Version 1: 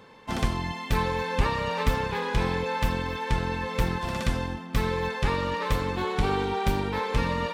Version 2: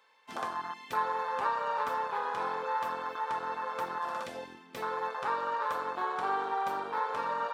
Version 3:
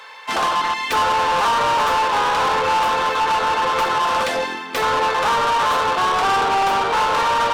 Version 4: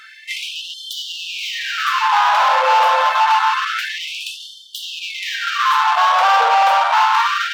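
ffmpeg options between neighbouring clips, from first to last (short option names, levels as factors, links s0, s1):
-filter_complex "[0:a]afwtdn=0.0398,highpass=890,asplit=2[s0][s1];[s1]acompressor=threshold=0.00708:ratio=6,volume=0.708[s2];[s0][s2]amix=inputs=2:normalize=0,volume=1.19"
-filter_complex "[0:a]asplit=2[s0][s1];[s1]highpass=f=720:p=1,volume=17.8,asoftclip=type=tanh:threshold=0.133[s2];[s0][s2]amix=inputs=2:normalize=0,lowpass=f=6600:p=1,volume=0.501,asplit=2[s3][s4];[s4]asoftclip=type=tanh:threshold=0.0316,volume=0.562[s5];[s3][s5]amix=inputs=2:normalize=0,volume=1.68"
-filter_complex "[0:a]asplit=2[s0][s1];[s1]adynamicsmooth=sensitivity=1.5:basefreq=1700,volume=0.841[s2];[s0][s2]amix=inputs=2:normalize=0,afftfilt=real='re*gte(b*sr/1024,470*pow(2900/470,0.5+0.5*sin(2*PI*0.27*pts/sr)))':imag='im*gte(b*sr/1024,470*pow(2900/470,0.5+0.5*sin(2*PI*0.27*pts/sr)))':win_size=1024:overlap=0.75"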